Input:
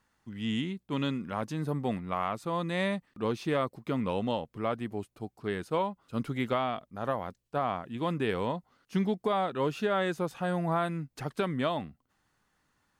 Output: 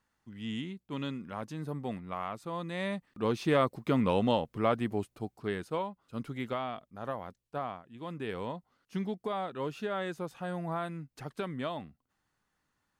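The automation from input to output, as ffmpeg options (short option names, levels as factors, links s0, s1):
-af "volume=3.98,afade=t=in:st=2.8:d=0.85:silence=0.354813,afade=t=out:st=4.92:d=0.93:silence=0.354813,afade=t=out:st=7.61:d=0.23:silence=0.354813,afade=t=in:st=7.84:d=0.54:silence=0.375837"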